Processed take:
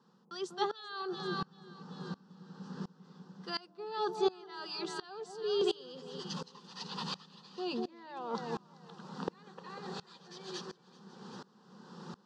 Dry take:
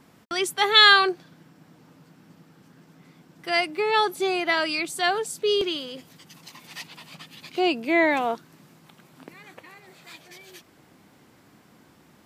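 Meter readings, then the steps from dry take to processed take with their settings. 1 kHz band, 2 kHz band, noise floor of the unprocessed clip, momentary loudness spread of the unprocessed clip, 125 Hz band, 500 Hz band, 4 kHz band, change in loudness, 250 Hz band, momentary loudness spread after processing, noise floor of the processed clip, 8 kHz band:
−14.5 dB, −24.5 dB, −57 dBFS, 24 LU, +3.0 dB, −10.0 dB, −18.5 dB, −18.0 dB, −10.0 dB, 18 LU, −64 dBFS, −15.0 dB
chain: reversed playback
downward compressor 5 to 1, threshold −39 dBFS, peak gain reduction 25.5 dB
reversed playback
loudspeaker in its box 180–5,600 Hz, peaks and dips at 190 Hz +7 dB, 760 Hz +3 dB, 4,500 Hz +3 dB
phaser with its sweep stopped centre 440 Hz, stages 8
on a send: delay that swaps between a low-pass and a high-pass 193 ms, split 850 Hz, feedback 67%, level −7 dB
on the sum: tremolo with a ramp in dB swelling 1.4 Hz, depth 24 dB
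level +13.5 dB

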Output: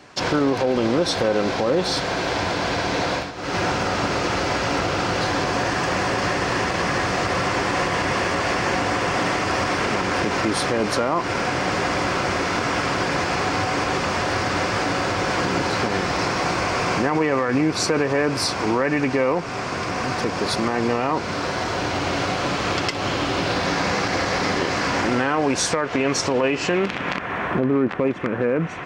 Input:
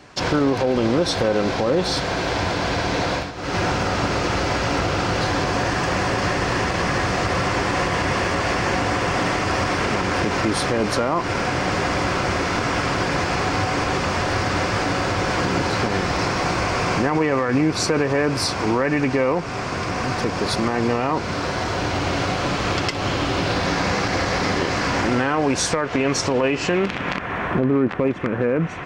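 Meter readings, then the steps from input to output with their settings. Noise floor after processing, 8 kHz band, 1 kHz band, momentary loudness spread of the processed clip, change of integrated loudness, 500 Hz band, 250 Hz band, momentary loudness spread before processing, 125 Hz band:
−28 dBFS, 0.0 dB, 0.0 dB, 3 LU, −0.5 dB, −0.5 dB, −1.0 dB, 3 LU, −3.5 dB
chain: low-shelf EQ 100 Hz −9 dB

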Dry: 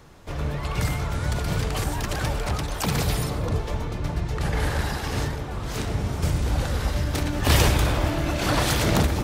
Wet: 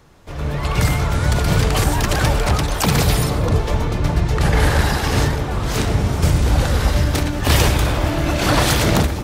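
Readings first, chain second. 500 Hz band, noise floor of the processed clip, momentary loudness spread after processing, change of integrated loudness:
+7.0 dB, −24 dBFS, 5 LU, +7.5 dB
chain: automatic gain control gain up to 11.5 dB
level −1 dB

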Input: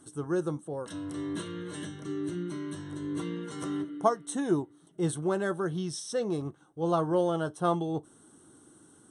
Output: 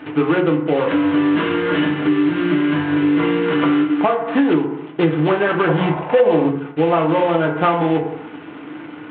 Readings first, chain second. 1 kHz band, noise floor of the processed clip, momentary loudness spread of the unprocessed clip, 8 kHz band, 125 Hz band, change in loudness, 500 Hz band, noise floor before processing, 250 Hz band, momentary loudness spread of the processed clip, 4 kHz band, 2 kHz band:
+14.0 dB, −35 dBFS, 10 LU, below −40 dB, +12.0 dB, +15.0 dB, +14.0 dB, −59 dBFS, +16.0 dB, 6 LU, +15.0 dB, +20.0 dB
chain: variable-slope delta modulation 16 kbit/s
high-pass filter 120 Hz
low-shelf EQ 350 Hz −6.5 dB
feedback delay network reverb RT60 0.59 s, low-frequency decay 0.9×, high-frequency decay 0.4×, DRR 1 dB
downward compressor 10 to 1, threshold −35 dBFS, peak gain reduction 14.5 dB
gain on a spectral selection 0:05.68–0:06.51, 480–1,100 Hz +9 dB
boost into a limiter +26.5 dB
level −4 dB

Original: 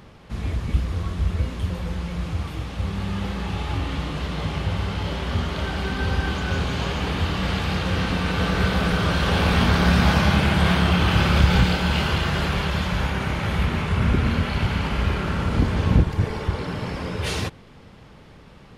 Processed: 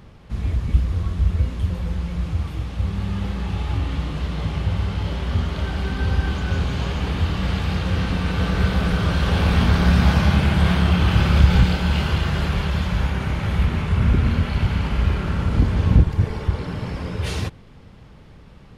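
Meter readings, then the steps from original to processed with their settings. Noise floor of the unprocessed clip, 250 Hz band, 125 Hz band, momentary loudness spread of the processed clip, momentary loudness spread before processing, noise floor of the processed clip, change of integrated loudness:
−47 dBFS, +0.5 dB, +3.0 dB, 9 LU, 10 LU, −45 dBFS, +1.5 dB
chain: low-shelf EQ 160 Hz +8.5 dB
level −3 dB

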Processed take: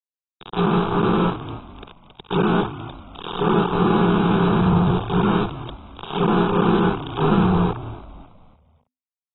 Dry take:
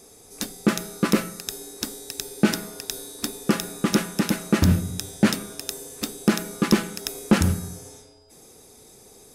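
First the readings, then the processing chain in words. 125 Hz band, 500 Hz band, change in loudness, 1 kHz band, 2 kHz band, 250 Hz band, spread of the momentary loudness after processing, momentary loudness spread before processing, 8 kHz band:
+5.5 dB, +8.0 dB, +5.0 dB, +11.5 dB, +1.0 dB, +3.5 dB, 18 LU, 12 LU, below −40 dB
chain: spectrum smeared in time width 186 ms
low-pass filter 4,800 Hz 24 dB per octave
in parallel at +1 dB: compressor whose output falls as the input rises −30 dBFS, ratio −0.5
on the sum: bit reduction 4 bits
treble cut that deepens with the level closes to 2,200 Hz, closed at −21.5 dBFS
phaser with its sweep stopped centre 390 Hz, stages 8
on a send: echo with shifted repeats 276 ms, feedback 39%, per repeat −64 Hz, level −14 dB
on the sum: level +7 dB
AAC 16 kbit/s 22,050 Hz

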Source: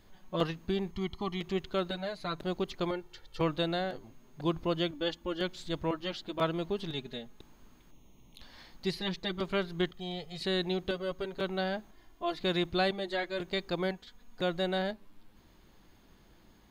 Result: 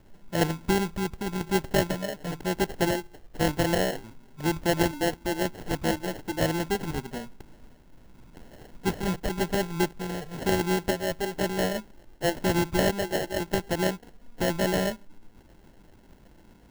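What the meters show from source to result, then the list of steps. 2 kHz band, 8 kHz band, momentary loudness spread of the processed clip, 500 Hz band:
+7.0 dB, +20.5 dB, 8 LU, +5.5 dB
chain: rotating-speaker cabinet horn 1 Hz, later 8 Hz, at 0:07.55
sample-rate reduction 1,200 Hz, jitter 0%
level +8 dB

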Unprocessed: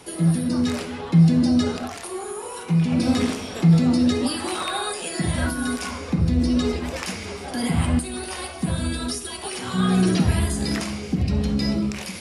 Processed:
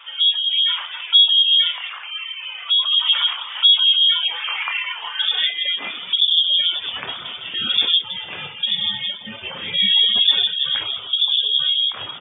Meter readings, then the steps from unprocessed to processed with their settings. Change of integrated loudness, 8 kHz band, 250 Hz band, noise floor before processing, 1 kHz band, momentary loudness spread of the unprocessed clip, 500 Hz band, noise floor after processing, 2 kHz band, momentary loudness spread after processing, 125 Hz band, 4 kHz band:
+6.5 dB, below −40 dB, −25.5 dB, −35 dBFS, −3.5 dB, 13 LU, −15.5 dB, −35 dBFS, +5.0 dB, 15 LU, below −25 dB, +20.5 dB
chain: repeating echo 162 ms, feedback 30%, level −12.5 dB
reverb reduction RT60 0.5 s
double-tracking delay 28 ms −8.5 dB
voice inversion scrambler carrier 3,500 Hz
gate on every frequency bin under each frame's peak −30 dB strong
high-pass filter sweep 1,100 Hz → 110 Hz, 0:05.15–0:06.25
level +2 dB

